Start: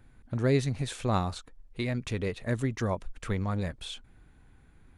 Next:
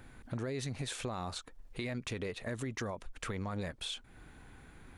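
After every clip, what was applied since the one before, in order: bass shelf 200 Hz -8.5 dB; peak limiter -27 dBFS, peak gain reduction 11.5 dB; compression 2:1, threshold -53 dBFS, peak gain reduction 11.5 dB; trim +9 dB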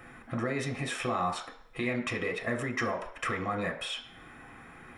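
reverberation RT60 0.60 s, pre-delay 3 ms, DRR 1 dB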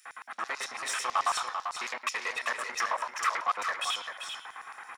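saturation -31 dBFS, distortion -10 dB; LFO high-pass square 9.1 Hz 990–5700 Hz; delay 391 ms -7 dB; trim +5.5 dB

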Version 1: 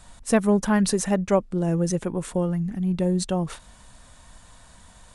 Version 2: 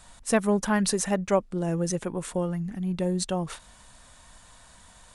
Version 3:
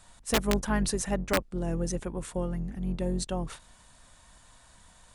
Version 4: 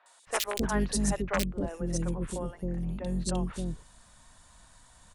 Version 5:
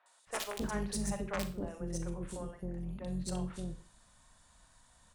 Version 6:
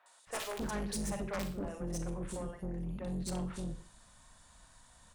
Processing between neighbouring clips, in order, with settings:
bass shelf 480 Hz -5.5 dB
octave divider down 2 oct, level -1 dB; integer overflow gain 12 dB; trim -4.5 dB
three bands offset in time mids, highs, lows 60/270 ms, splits 450/2600 Hz
valve stage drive 20 dB, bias 0.45; on a send at -8.5 dB: reverberation RT60 0.35 s, pre-delay 29 ms; on the sum: trim -5.5 dB
saturation -36 dBFS, distortion -11 dB; trim +3.5 dB

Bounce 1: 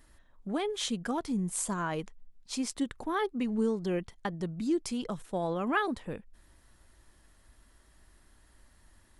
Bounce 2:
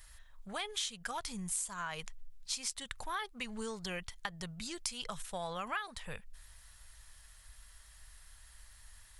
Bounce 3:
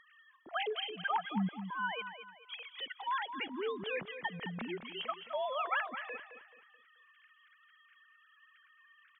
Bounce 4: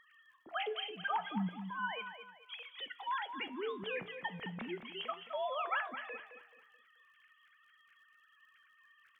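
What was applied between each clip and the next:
amplifier tone stack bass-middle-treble 10-0-10; compression 8:1, threshold -44 dBFS, peak gain reduction 13.5 dB; trim +9.5 dB
formants replaced by sine waves; on a send: feedback delay 216 ms, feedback 36%, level -10 dB; on the sum: trim +2 dB
flange 0.36 Hz, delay 9.5 ms, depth 7.9 ms, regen +78%; crackle 56 per s -67 dBFS; trim +2.5 dB

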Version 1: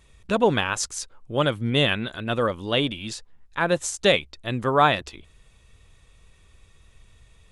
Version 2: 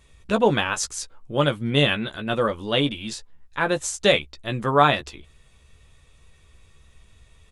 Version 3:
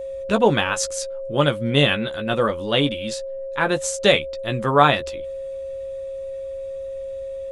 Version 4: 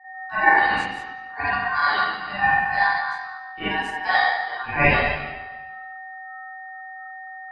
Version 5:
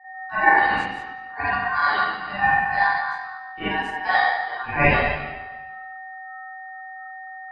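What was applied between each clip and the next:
doubling 14 ms -7 dB
whistle 540 Hz -30 dBFS; trim +2 dB
spring tank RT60 1.7 s, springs 36/42/46 ms, chirp 50 ms, DRR -9.5 dB; ring modulator 1.3 kHz; spectral contrast expander 1.5:1; trim -7.5 dB
treble shelf 3.8 kHz -8 dB; trim +1 dB

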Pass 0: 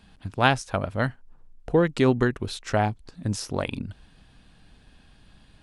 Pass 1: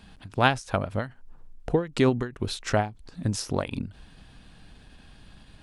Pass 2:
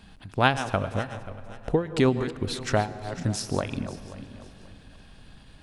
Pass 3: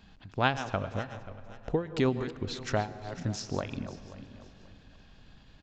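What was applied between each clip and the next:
in parallel at +1 dB: compression, threshold -30 dBFS, peak gain reduction 15.5 dB; on the sum: endings held to a fixed fall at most 180 dB/s; trim -2.5 dB
backward echo that repeats 267 ms, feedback 52%, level -12 dB; on a send at -16 dB: reverberation RT60 3.1 s, pre-delay 101 ms
resampled via 16 kHz; trim -5.5 dB

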